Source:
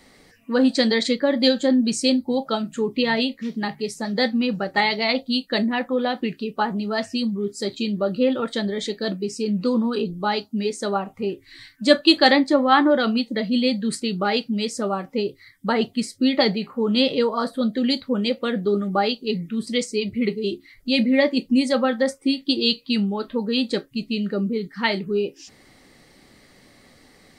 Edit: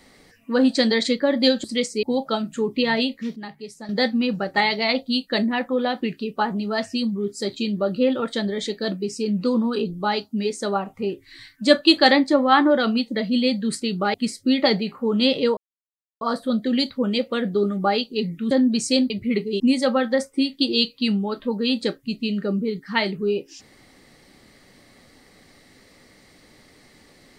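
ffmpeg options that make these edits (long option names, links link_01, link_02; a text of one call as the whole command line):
ffmpeg -i in.wav -filter_complex "[0:a]asplit=10[link_01][link_02][link_03][link_04][link_05][link_06][link_07][link_08][link_09][link_10];[link_01]atrim=end=1.642[link_11];[link_02]atrim=start=19.618:end=20.012[link_12];[link_03]atrim=start=2.228:end=3.562[link_13];[link_04]atrim=start=3.558:end=4.092,asetpts=PTS-STARTPTS,volume=-9.5dB[link_14];[link_05]atrim=start=4.088:end=14.342[link_15];[link_06]atrim=start=15.888:end=17.32,asetpts=PTS-STARTPTS,afade=type=out:start_time=1.428:duration=0.004:curve=hsin,apad=pad_dur=0.64[link_16];[link_07]atrim=start=17.32:end=19.622,asetpts=PTS-STARTPTS,afade=type=in:duration=0.004:curve=hsin[link_17];[link_08]atrim=start=1.638:end=2.232[link_18];[link_09]atrim=start=20.008:end=20.512[link_19];[link_10]atrim=start=21.478[link_20];[link_11][link_12]acrossfade=duration=0.004:curve1=hsin:curve2=hsin[link_21];[link_21][link_13]acrossfade=duration=0.004:curve1=hsin:curve2=hsin[link_22];[link_22][link_14]acrossfade=duration=0.004:curve1=hsin:curve2=hsin[link_23];[link_23][link_15]acrossfade=duration=0.004:curve1=hsin:curve2=hsin[link_24];[link_16][link_17]concat=n=2:v=0:a=1[link_25];[link_24][link_25]acrossfade=duration=0.004:curve1=hsin:curve2=hsin[link_26];[link_26][link_18]acrossfade=duration=0.004:curve1=hsin:curve2=hsin[link_27];[link_27][link_19]acrossfade=duration=0.004:curve1=hsin:curve2=hsin[link_28];[link_28][link_20]acrossfade=duration=0.004:curve1=hsin:curve2=hsin" out.wav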